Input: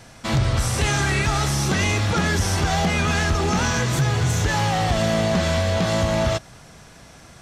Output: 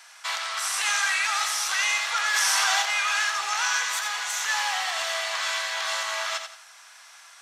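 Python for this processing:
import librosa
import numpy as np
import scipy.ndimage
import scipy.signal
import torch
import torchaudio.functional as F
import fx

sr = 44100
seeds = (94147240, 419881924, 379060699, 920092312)

p1 = scipy.signal.sosfilt(scipy.signal.butter(4, 990.0, 'highpass', fs=sr, output='sos'), x)
p2 = p1 + fx.echo_feedback(p1, sr, ms=88, feedback_pct=32, wet_db=-7.5, dry=0)
y = fx.env_flatten(p2, sr, amount_pct=100, at=(2.33, 2.81), fade=0.02)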